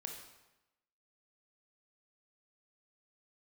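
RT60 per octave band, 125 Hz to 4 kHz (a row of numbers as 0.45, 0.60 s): 0.95, 0.95, 0.95, 1.0, 0.95, 0.85 s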